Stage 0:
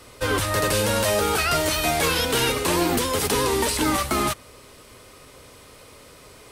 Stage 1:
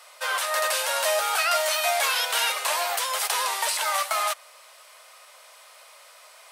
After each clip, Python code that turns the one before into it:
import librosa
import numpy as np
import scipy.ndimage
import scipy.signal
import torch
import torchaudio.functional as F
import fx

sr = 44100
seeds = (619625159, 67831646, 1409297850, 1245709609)

y = scipy.signal.sosfilt(scipy.signal.ellip(4, 1.0, 60, 620.0, 'highpass', fs=sr, output='sos'), x)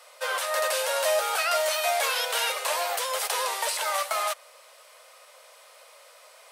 y = fx.peak_eq(x, sr, hz=500.0, db=9.0, octaves=0.55)
y = F.gain(torch.from_numpy(y), -3.0).numpy()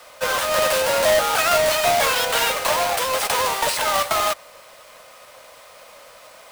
y = fx.halfwave_hold(x, sr)
y = F.gain(torch.from_numpy(y), 2.5).numpy()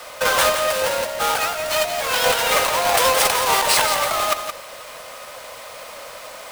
y = fx.over_compress(x, sr, threshold_db=-23.0, ratio=-0.5)
y = y + 10.0 ** (-8.0 / 20.0) * np.pad(y, (int(171 * sr / 1000.0), 0))[:len(y)]
y = F.gain(torch.from_numpy(y), 4.0).numpy()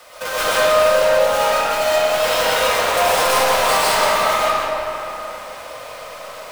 y = np.clip(10.0 ** (15.0 / 20.0) * x, -1.0, 1.0) / 10.0 ** (15.0 / 20.0)
y = fx.rev_freeverb(y, sr, rt60_s=3.6, hf_ratio=0.45, predelay_ms=75, drr_db=-10.0)
y = F.gain(torch.from_numpy(y), -7.5).numpy()